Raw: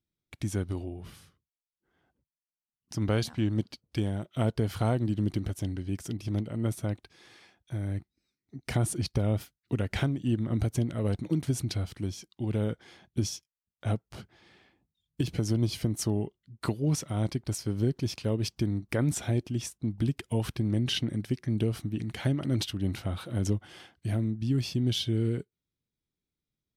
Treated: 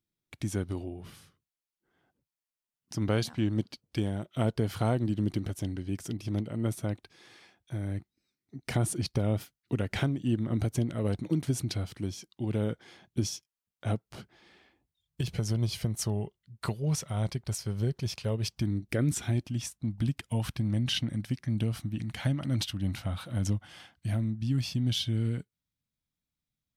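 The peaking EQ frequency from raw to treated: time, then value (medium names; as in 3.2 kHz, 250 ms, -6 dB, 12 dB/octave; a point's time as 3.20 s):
peaking EQ -13.5 dB 0.52 oct
14.03 s 60 Hz
15.21 s 290 Hz
18.56 s 290 Hz
18.84 s 1.2 kHz
19.45 s 390 Hz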